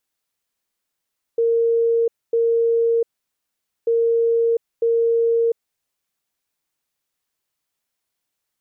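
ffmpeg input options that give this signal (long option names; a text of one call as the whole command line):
ffmpeg -f lavfi -i "aevalsrc='0.188*sin(2*PI*462*t)*clip(min(mod(mod(t,2.49),0.95),0.7-mod(mod(t,2.49),0.95))/0.005,0,1)*lt(mod(t,2.49),1.9)':duration=4.98:sample_rate=44100" out.wav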